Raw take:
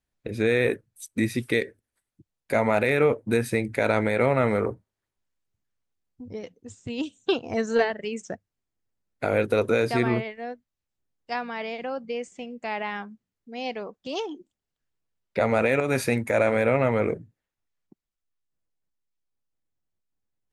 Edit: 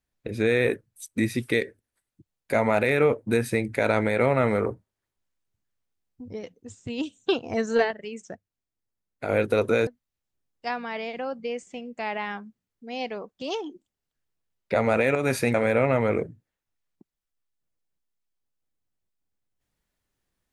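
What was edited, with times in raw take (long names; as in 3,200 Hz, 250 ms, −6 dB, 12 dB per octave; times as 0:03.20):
0:07.91–0:09.29: clip gain −5 dB
0:09.87–0:10.52: remove
0:16.19–0:16.45: remove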